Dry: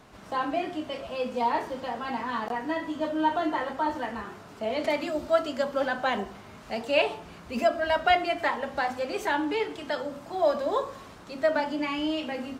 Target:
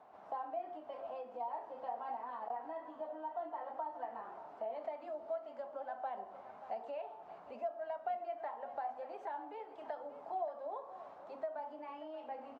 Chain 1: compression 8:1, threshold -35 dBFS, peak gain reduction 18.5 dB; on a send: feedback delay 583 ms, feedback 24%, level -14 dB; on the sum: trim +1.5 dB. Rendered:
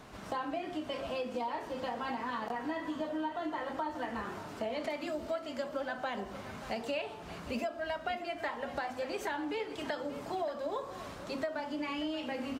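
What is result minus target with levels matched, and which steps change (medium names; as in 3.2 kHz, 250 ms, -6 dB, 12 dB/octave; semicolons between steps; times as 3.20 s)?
1 kHz band -3.5 dB
add after compression: band-pass filter 760 Hz, Q 3.5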